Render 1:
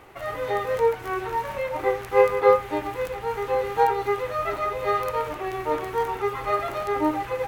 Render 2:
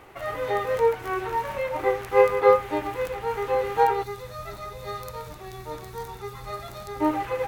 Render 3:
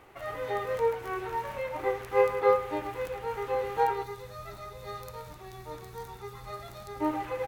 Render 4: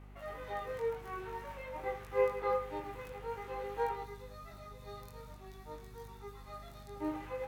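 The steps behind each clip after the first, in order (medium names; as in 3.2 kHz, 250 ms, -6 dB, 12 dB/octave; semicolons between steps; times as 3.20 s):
time-frequency box 4.04–7.01 s, 230–3400 Hz -11 dB
feedback delay 107 ms, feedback 39%, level -15.5 dB; trim -6 dB
chorus 0.5 Hz, delay 19 ms, depth 3.4 ms; hum 50 Hz, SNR 13 dB; trim -5.5 dB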